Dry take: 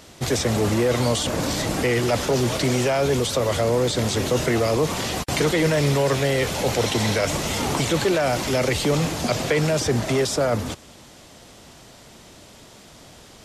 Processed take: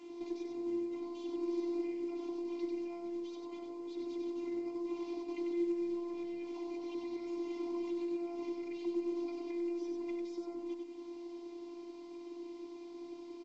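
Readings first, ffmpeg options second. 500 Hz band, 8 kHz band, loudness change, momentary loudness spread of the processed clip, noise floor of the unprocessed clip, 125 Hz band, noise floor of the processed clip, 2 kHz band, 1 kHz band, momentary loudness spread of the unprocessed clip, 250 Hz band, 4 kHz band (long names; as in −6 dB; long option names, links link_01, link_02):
−18.5 dB, below −35 dB, −18.5 dB, 10 LU, −47 dBFS, below −40 dB, −49 dBFS, −30.5 dB, −25.0 dB, 4 LU, −11.5 dB, −31.5 dB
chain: -filter_complex "[0:a]highpass=140,equalizer=frequency=1900:width_type=o:width=1.7:gain=-5.5,acrossover=split=180[link_01][link_02];[link_01]acompressor=threshold=-31dB:ratio=2[link_03];[link_03][link_02]amix=inputs=2:normalize=0,alimiter=limit=-18dB:level=0:latency=1:release=11,acompressor=threshold=-40dB:ratio=5,asplit=3[link_04][link_05][link_06];[link_04]bandpass=frequency=300:width_type=q:width=8,volume=0dB[link_07];[link_05]bandpass=frequency=870:width_type=q:width=8,volume=-6dB[link_08];[link_06]bandpass=frequency=2240:width_type=q:width=8,volume=-9dB[link_09];[link_07][link_08][link_09]amix=inputs=3:normalize=0,afftfilt=real='hypot(re,im)*cos(PI*b)':imag='0':win_size=512:overlap=0.75,aecho=1:1:96|192|288|384:0.631|0.196|0.0606|0.0188,volume=11.5dB" -ar 16000 -c:a pcm_alaw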